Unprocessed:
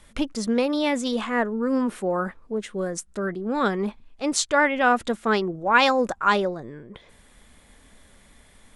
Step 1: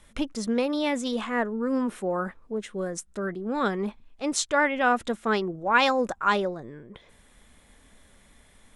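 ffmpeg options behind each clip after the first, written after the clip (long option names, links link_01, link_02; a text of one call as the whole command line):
ffmpeg -i in.wav -af "bandreject=frequency=4600:width=19,volume=-3dB" out.wav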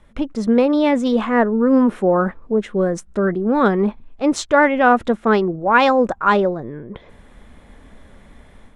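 ffmpeg -i in.wav -filter_complex "[0:a]asplit=2[link_01][link_02];[link_02]adynamicsmooth=sensitivity=4.5:basefreq=6800,volume=-0.5dB[link_03];[link_01][link_03]amix=inputs=2:normalize=0,highshelf=frequency=2000:gain=-11.5,dynaudnorm=framelen=240:gausssize=3:maxgain=7.5dB" out.wav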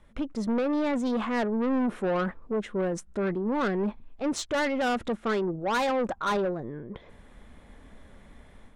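ffmpeg -i in.wav -af "asoftclip=type=tanh:threshold=-17dB,volume=-6dB" out.wav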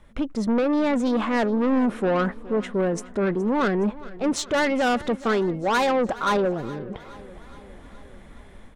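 ffmpeg -i in.wav -af "aecho=1:1:419|838|1257|1676|2095:0.112|0.0673|0.0404|0.0242|0.0145,volume=5dB" out.wav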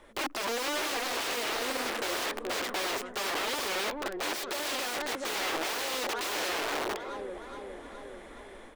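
ffmpeg -i in.wav -filter_complex "[0:a]aeval=exprs='(mod(29.9*val(0)+1,2)-1)/29.9':channel_layout=same,acrossover=split=5600[link_01][link_02];[link_02]acompressor=threshold=-42dB:ratio=4:attack=1:release=60[link_03];[link_01][link_03]amix=inputs=2:normalize=0,lowshelf=frequency=240:width_type=q:width=1.5:gain=-13,volume=3dB" out.wav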